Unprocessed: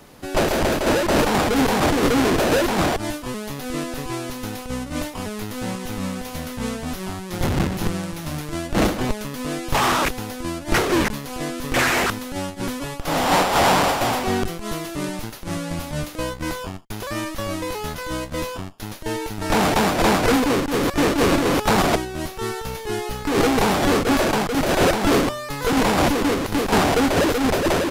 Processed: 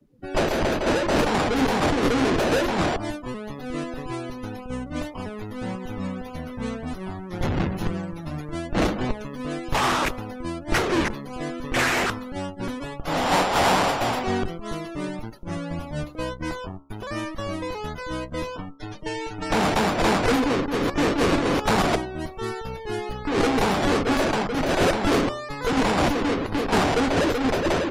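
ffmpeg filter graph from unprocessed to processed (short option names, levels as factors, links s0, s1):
-filter_complex "[0:a]asettb=1/sr,asplit=3[s0][s1][s2];[s0]atrim=end=18.574[s3];[s1]atrim=start=18.57:end=19.52,asetpts=PTS-STARTPTS,afade=t=in:d=0.004:c=qsin,afade=t=out:st=0.946:d=0.004:c=qsin,lowpass=f=10000:w=0.5412,lowpass=f=10000:w=1.3066,aecho=1:1:6.7:0.94,atrim=end_sample=41895,acrossover=split=98|850[s4][s5][s6];[s4]acompressor=threshold=0.02:ratio=4[s7];[s5]acompressor=threshold=0.0355:ratio=4[s8];[s6]acompressor=threshold=0.0398:ratio=4[s9];[s7][s8][s9]amix=inputs=3:normalize=0[s10];[s2]atrim=start=19.516[s11];[s3][s10]acrossfade=d=0.004:c1=hsin:c2=qsin[s12];[s12][s11]acrossfade=d=0.004:c1=qsin:c2=hsin,afftdn=nr=29:nf=-36,bandreject=f=69.39:t=h:w=4,bandreject=f=138.78:t=h:w=4,bandreject=f=208.17:t=h:w=4,bandreject=f=277.56:t=h:w=4,bandreject=f=346.95:t=h:w=4,bandreject=f=416.34:t=h:w=4,bandreject=f=485.73:t=h:w=4,bandreject=f=555.12:t=h:w=4,bandreject=f=624.51:t=h:w=4,bandreject=f=693.9:t=h:w=4,bandreject=f=763.29:t=h:w=4,bandreject=f=832.68:t=h:w=4,bandreject=f=902.07:t=h:w=4,bandreject=f=971.46:t=h:w=4,bandreject=f=1040.85:t=h:w=4,bandreject=f=1110.24:t=h:w=4,bandreject=f=1179.63:t=h:w=4,bandreject=f=1249.02:t=h:w=4,bandreject=f=1318.41:t=h:w=4,bandreject=f=1387.8:t=h:w=4,volume=0.75"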